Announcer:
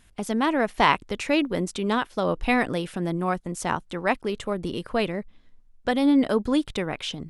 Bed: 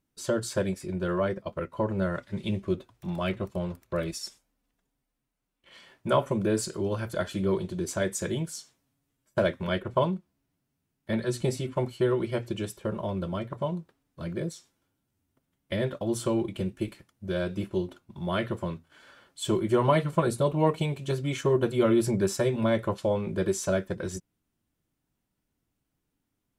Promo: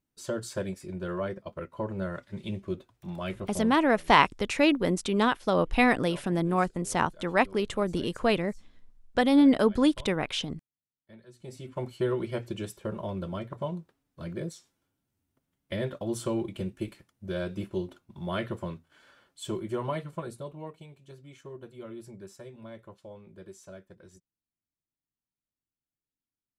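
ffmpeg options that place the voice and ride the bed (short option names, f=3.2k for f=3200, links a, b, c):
-filter_complex "[0:a]adelay=3300,volume=0dB[a];[1:a]volume=15.5dB,afade=t=out:st=3.65:d=0.3:silence=0.11885,afade=t=in:st=11.39:d=0.61:silence=0.0944061,afade=t=out:st=18.57:d=2.18:silence=0.141254[b];[a][b]amix=inputs=2:normalize=0"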